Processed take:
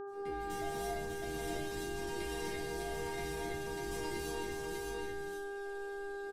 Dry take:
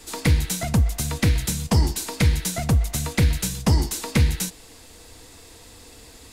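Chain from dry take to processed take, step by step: fade-in on the opening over 0.56 s; treble shelf 4.1 kHz -6.5 dB; comb 6.1 ms, depth 60%; peak limiter -18.5 dBFS, peak gain reduction 11.5 dB; chord resonator A#3 sus4, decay 0.31 s; rotary cabinet horn 1.2 Hz; mains buzz 400 Hz, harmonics 4, -43 dBFS -9 dB/octave; multi-tap echo 476/598/617 ms -13.5/-4/-11.5 dB; gated-style reverb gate 360 ms rising, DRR -5 dB

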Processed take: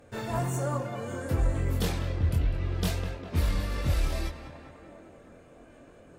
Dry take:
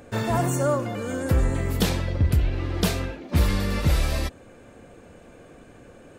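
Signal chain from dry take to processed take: Chebyshev shaper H 4 -29 dB, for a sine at -10.5 dBFS; tape echo 201 ms, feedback 82%, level -8.5 dB, low-pass 2.6 kHz; chorus voices 4, 0.63 Hz, delay 23 ms, depth 1.7 ms; trim -4.5 dB

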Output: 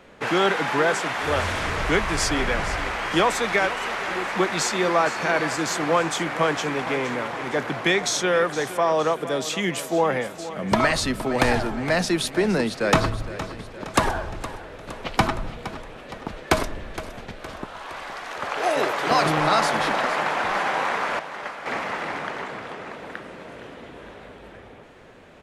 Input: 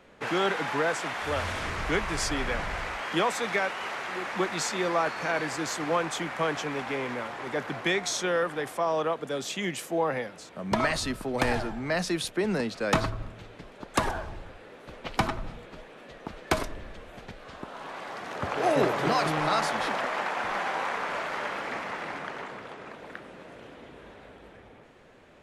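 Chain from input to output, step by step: 17.65–19.11 s: high-pass 840 Hz 6 dB/octave; 21.19–21.66 s: gate -30 dBFS, range -14 dB; feedback delay 465 ms, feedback 53%, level -14 dB; trim +6 dB

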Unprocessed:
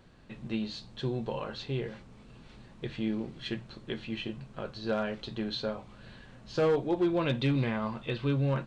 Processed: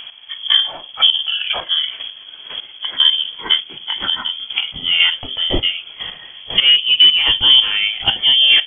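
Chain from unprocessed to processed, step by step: pitch bend over the whole clip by -10 st ending unshifted; dynamic bell 2.2 kHz, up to -6 dB, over -53 dBFS, Q 1.8; square tremolo 2 Hz, depth 65%, duty 20%; frequency inversion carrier 3.3 kHz; loudness maximiser +25.5 dB; trim -1 dB

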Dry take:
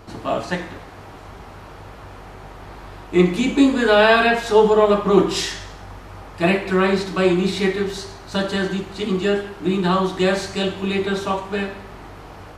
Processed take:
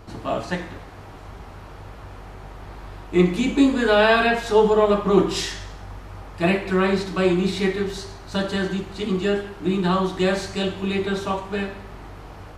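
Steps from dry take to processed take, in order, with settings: bass shelf 110 Hz +6.5 dB; trim -3 dB

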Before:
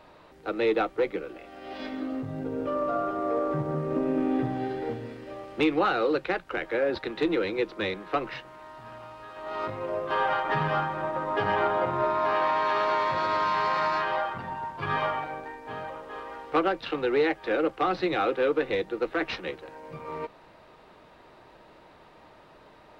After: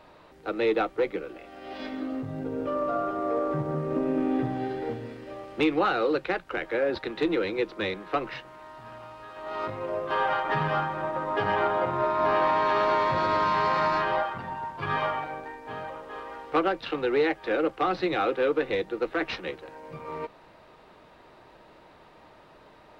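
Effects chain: 12.19–14.23 s: bass shelf 450 Hz +7.5 dB

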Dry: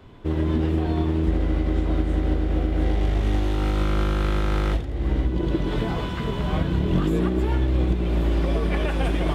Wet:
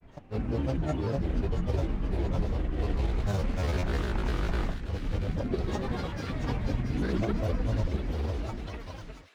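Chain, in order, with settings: fade out at the end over 1.68 s; granulator, pitch spread up and down by 12 st; feedback echo behind a high-pass 681 ms, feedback 48%, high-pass 1.8 kHz, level -6.5 dB; trim -5.5 dB

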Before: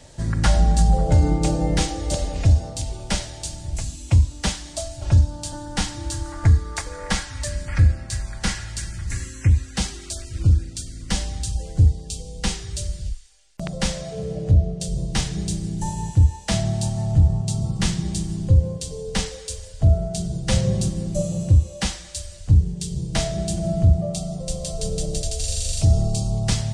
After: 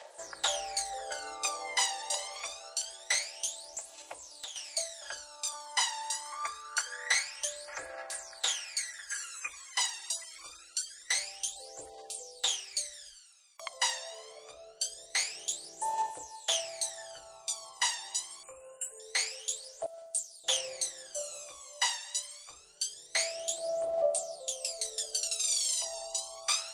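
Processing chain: inverse Chebyshev high-pass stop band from 230 Hz, stop band 50 dB; 3.61–4.56 s: compression 12:1, threshold -38 dBFS, peak gain reduction 16 dB; 19.86–20.44 s: differentiator; phaser 0.25 Hz, delay 1.1 ms, feedback 80%; 18.43–19.00 s: brick-wall FIR band-stop 3–6.8 kHz; trim -6 dB

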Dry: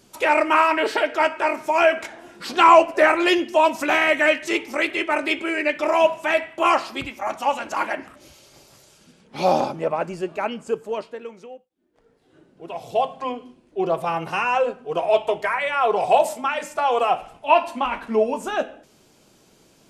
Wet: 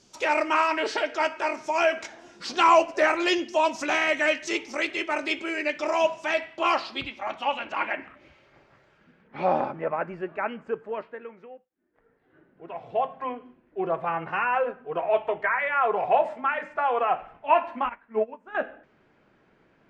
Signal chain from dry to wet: low-pass sweep 6 kHz -> 1.8 kHz, 6.15–8.58 s; 17.89–18.55 s: upward expansion 2.5:1, over -28 dBFS; trim -6 dB

